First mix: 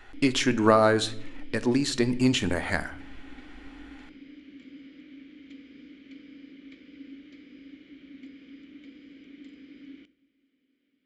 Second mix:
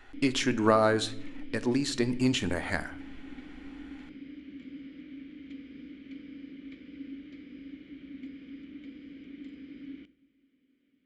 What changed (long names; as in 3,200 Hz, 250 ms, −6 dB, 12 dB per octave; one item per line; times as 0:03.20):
speech −3.5 dB
background: add bass and treble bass +7 dB, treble −6 dB